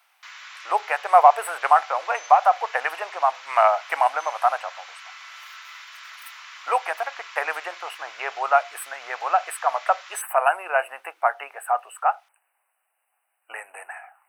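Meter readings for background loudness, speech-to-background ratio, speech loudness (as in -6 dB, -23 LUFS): -40.5 LUFS, 18.0 dB, -22.5 LUFS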